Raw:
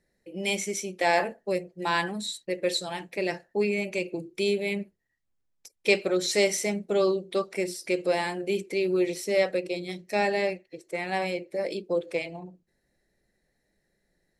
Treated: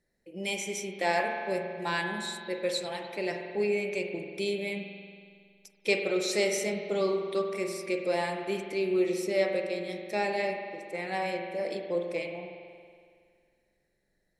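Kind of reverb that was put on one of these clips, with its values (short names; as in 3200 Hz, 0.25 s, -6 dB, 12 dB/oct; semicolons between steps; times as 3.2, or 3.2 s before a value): spring tank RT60 2.1 s, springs 46 ms, chirp 60 ms, DRR 3.5 dB; gain -4.5 dB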